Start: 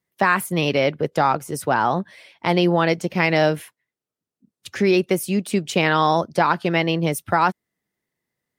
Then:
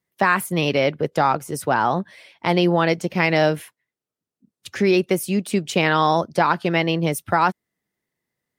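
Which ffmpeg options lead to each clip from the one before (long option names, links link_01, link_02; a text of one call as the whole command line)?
ffmpeg -i in.wav -af anull out.wav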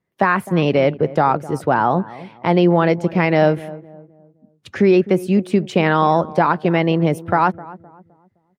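ffmpeg -i in.wav -filter_complex "[0:a]lowpass=frequency=1200:poles=1,asplit=2[link_01][link_02];[link_02]alimiter=limit=-15.5dB:level=0:latency=1:release=252,volume=-2.5dB[link_03];[link_01][link_03]amix=inputs=2:normalize=0,asplit=2[link_04][link_05];[link_05]adelay=258,lowpass=frequency=850:poles=1,volume=-16.5dB,asplit=2[link_06][link_07];[link_07]adelay=258,lowpass=frequency=850:poles=1,volume=0.41,asplit=2[link_08][link_09];[link_09]adelay=258,lowpass=frequency=850:poles=1,volume=0.41,asplit=2[link_10][link_11];[link_11]adelay=258,lowpass=frequency=850:poles=1,volume=0.41[link_12];[link_04][link_06][link_08][link_10][link_12]amix=inputs=5:normalize=0,volume=2dB" out.wav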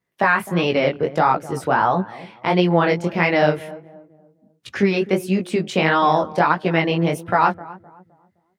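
ffmpeg -i in.wav -af "deesser=0.5,tiltshelf=frequency=970:gain=-4,flanger=delay=16:depth=7.8:speed=1.5,volume=2.5dB" out.wav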